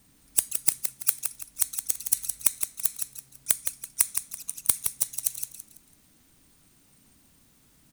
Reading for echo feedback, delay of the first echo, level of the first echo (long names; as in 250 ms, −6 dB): 32%, 166 ms, −7.0 dB